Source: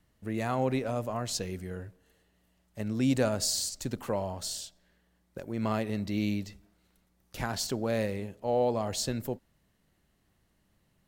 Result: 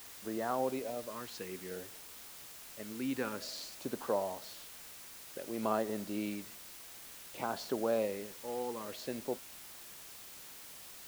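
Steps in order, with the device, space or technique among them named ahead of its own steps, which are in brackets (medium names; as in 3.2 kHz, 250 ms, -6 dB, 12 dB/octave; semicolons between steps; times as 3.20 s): shortwave radio (band-pass 320–2500 Hz; tremolo 0.52 Hz, depth 49%; LFO notch sine 0.55 Hz 610–2400 Hz; white noise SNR 11 dB); trim +1 dB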